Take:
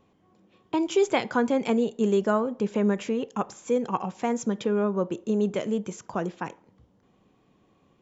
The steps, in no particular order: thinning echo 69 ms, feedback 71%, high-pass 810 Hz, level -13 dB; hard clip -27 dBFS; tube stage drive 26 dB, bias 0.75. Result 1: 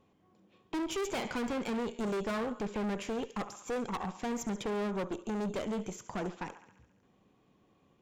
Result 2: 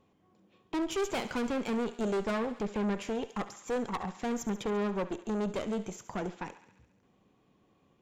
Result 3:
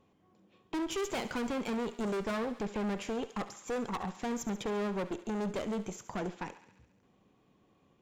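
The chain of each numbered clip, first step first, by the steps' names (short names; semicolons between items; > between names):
thinning echo > hard clip > tube stage; tube stage > thinning echo > hard clip; hard clip > tube stage > thinning echo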